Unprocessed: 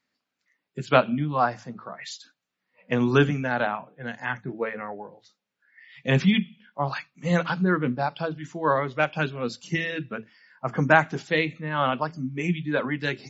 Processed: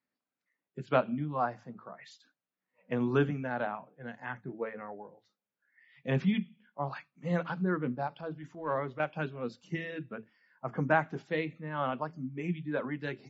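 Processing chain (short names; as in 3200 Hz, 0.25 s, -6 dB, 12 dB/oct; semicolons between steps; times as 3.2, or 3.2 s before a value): HPF 700 Hz 6 dB/oct; tilt -4.5 dB/oct; 8.07–9 transient shaper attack -8 dB, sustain +1 dB; gain -7 dB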